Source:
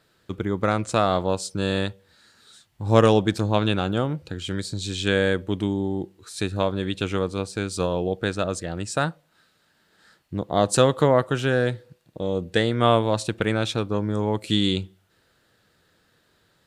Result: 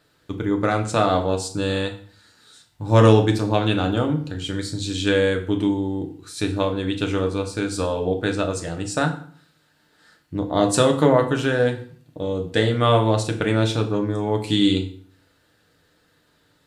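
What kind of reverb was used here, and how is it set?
FDN reverb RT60 0.51 s, low-frequency decay 1.25×, high-frequency decay 0.85×, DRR 3 dB

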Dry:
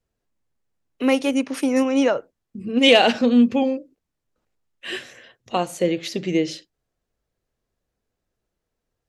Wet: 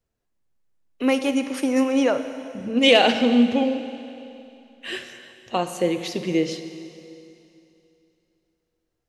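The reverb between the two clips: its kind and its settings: Schroeder reverb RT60 2.8 s, combs from 31 ms, DRR 9 dB; trim -1.5 dB

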